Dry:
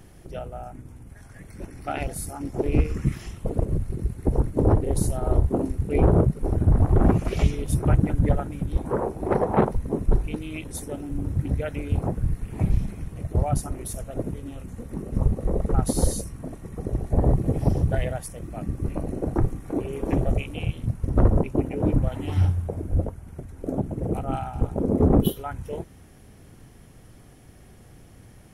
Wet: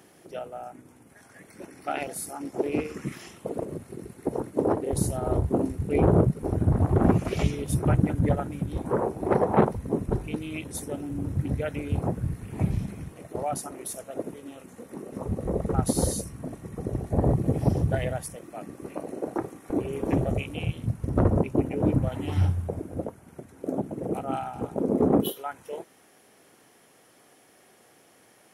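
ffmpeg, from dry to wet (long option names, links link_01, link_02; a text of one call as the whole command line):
ffmpeg -i in.wav -af "asetnsamples=nb_out_samples=441:pad=0,asendcmd='4.93 highpass f 94;13.12 highpass f 310;15.28 highpass f 86;18.36 highpass f 350;19.7 highpass f 87;22.79 highpass f 210;25.26 highpass f 430',highpass=270" out.wav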